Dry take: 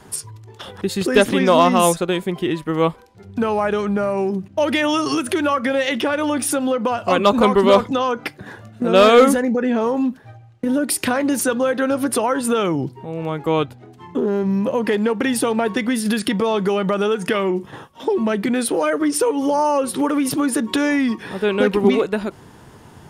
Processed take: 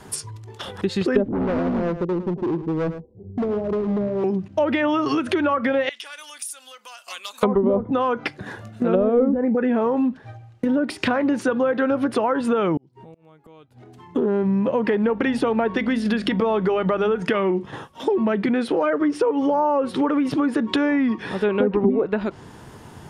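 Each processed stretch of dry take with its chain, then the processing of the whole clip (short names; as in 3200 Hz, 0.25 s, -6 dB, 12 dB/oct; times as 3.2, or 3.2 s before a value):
1.28–4.24 inverse Chebyshev low-pass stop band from 1700 Hz, stop band 60 dB + overloaded stage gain 21 dB + echo 0.108 s -12 dB
5.89–7.43 HPF 1300 Hz 6 dB/oct + differentiator + compressor 5:1, threshold -29 dBFS
12.77–14.16 flipped gate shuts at -19 dBFS, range -28 dB + compressor 5:1, threshold -43 dBFS
15.02–17.22 notches 50/100/150/200/250 Hz + buzz 50 Hz, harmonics 14, -46 dBFS -2 dB/oct
whole clip: treble ducked by the level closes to 430 Hz, closed at -10 dBFS; compressor 1.5:1, threshold -23 dBFS; gain +1.5 dB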